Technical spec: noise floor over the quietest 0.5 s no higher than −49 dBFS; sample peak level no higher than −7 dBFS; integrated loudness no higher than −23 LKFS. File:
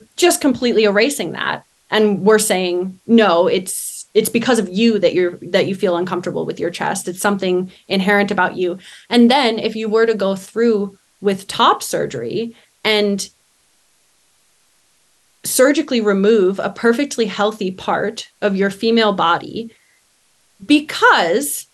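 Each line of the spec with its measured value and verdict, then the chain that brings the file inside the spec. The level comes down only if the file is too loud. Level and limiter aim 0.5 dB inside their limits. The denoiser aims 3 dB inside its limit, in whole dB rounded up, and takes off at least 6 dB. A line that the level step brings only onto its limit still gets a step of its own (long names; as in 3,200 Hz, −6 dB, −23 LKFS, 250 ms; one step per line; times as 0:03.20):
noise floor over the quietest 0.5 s −58 dBFS: in spec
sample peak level −2.0 dBFS: out of spec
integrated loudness −16.5 LKFS: out of spec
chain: level −7 dB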